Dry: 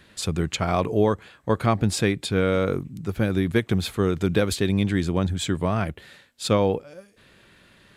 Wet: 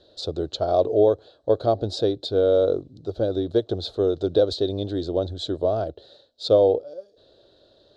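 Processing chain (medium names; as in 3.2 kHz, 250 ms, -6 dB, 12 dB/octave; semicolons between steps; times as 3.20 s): FFT filter 110 Hz 0 dB, 190 Hz -10 dB, 300 Hz +6 dB, 630 Hz +15 dB, 1 kHz -6 dB, 1.5 kHz -6 dB, 2.2 kHz -25 dB, 3.9 kHz +11 dB, 13 kHz -28 dB; trim -6.5 dB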